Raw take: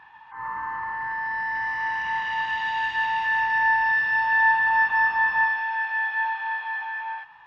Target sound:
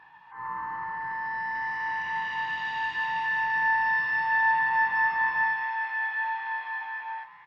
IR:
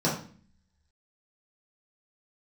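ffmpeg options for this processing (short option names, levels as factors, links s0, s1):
-filter_complex "[0:a]asplit=5[s0][s1][s2][s3][s4];[s1]adelay=215,afreqshift=130,volume=0.0708[s5];[s2]adelay=430,afreqshift=260,volume=0.0398[s6];[s3]adelay=645,afreqshift=390,volume=0.0221[s7];[s4]adelay=860,afreqshift=520,volume=0.0124[s8];[s0][s5][s6][s7][s8]amix=inputs=5:normalize=0,asplit=2[s9][s10];[1:a]atrim=start_sample=2205,atrim=end_sample=6174[s11];[s10][s11]afir=irnorm=-1:irlink=0,volume=0.119[s12];[s9][s12]amix=inputs=2:normalize=0,volume=0.562"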